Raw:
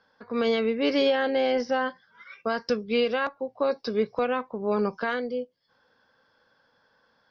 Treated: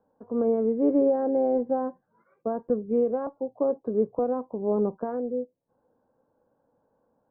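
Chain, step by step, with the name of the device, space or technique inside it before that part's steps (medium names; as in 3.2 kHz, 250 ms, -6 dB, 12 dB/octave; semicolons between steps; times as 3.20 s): under water (low-pass 820 Hz 24 dB/octave; peaking EQ 300 Hz +4.5 dB 0.55 oct)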